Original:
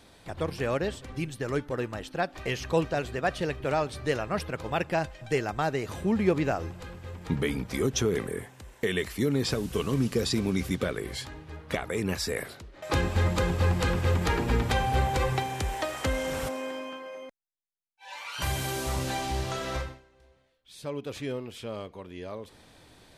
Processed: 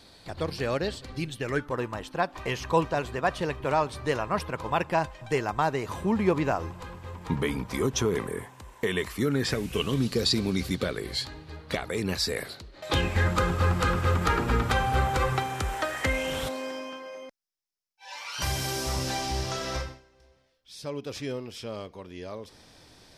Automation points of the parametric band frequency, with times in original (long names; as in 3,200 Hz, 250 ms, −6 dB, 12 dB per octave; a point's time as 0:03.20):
parametric band +11 dB 0.38 octaves
0:01.26 4,400 Hz
0:01.72 1,000 Hz
0:09.05 1,000 Hz
0:10.11 4,300 Hz
0:12.84 4,300 Hz
0:13.34 1,300 Hz
0:15.77 1,300 Hz
0:16.70 5,300 Hz